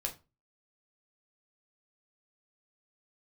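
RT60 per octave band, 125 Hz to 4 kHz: 0.45, 0.35, 0.30, 0.30, 0.25, 0.20 s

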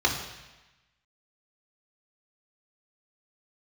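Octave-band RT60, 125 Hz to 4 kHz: 1.2, 1.1, 1.0, 1.1, 1.2, 1.1 s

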